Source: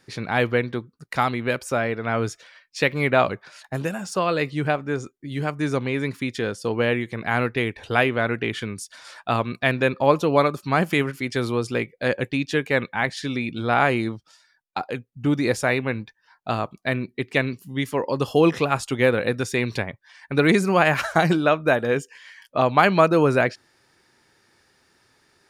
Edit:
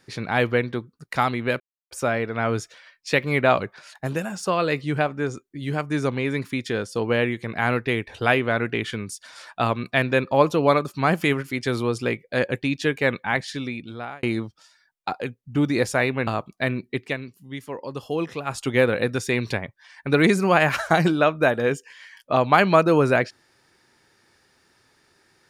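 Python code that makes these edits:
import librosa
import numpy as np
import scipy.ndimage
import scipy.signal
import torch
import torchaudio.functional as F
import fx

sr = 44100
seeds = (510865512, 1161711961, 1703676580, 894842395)

y = fx.edit(x, sr, fx.insert_silence(at_s=1.6, length_s=0.31),
    fx.fade_out_span(start_s=13.07, length_s=0.85),
    fx.cut(start_s=15.96, length_s=0.56),
    fx.fade_down_up(start_s=17.24, length_s=1.63, db=-9.0, fade_s=0.17), tone=tone)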